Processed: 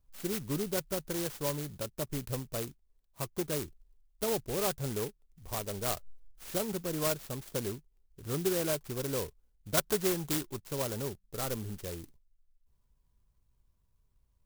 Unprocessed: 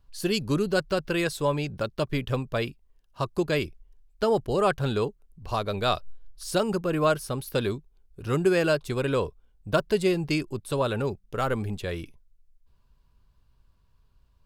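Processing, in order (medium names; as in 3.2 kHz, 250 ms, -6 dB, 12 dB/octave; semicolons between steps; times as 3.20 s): 9.77–10.60 s: peaking EQ 1.5 kHz +14 dB 1.4 oct; sampling jitter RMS 0.15 ms; trim -8.5 dB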